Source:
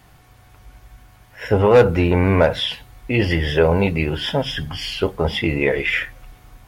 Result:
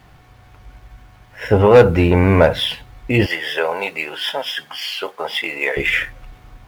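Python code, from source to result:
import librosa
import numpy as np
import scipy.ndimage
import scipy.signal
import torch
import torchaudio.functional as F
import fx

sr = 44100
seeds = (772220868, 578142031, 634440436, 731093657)

y = scipy.ndimage.median_filter(x, 5, mode='constant')
y = fx.highpass(y, sr, hz=740.0, slope=12, at=(3.26, 5.77))
y = y * librosa.db_to_amplitude(3.0)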